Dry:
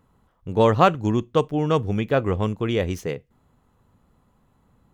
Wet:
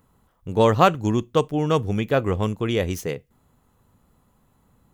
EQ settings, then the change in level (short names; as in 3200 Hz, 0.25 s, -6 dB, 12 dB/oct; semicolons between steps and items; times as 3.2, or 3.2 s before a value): high shelf 6800 Hz +11 dB; 0.0 dB